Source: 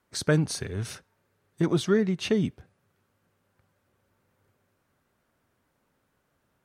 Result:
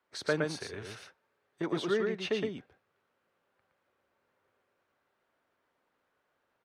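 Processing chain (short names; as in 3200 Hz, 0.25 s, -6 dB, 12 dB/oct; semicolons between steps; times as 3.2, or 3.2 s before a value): three-band isolator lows -15 dB, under 330 Hz, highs -13 dB, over 4600 Hz; echo 0.116 s -3.5 dB; gain -3.5 dB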